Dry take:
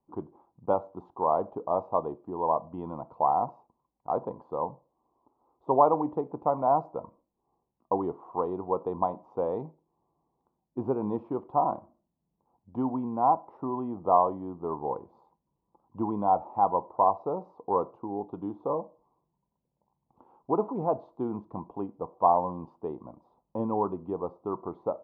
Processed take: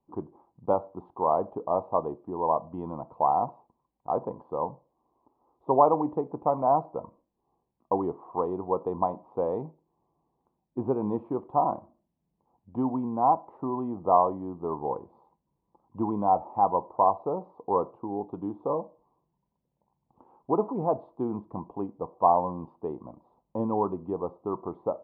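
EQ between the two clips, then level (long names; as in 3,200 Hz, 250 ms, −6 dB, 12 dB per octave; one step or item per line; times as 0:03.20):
high-frequency loss of the air 280 metres
notch filter 1,400 Hz, Q 16
+2.0 dB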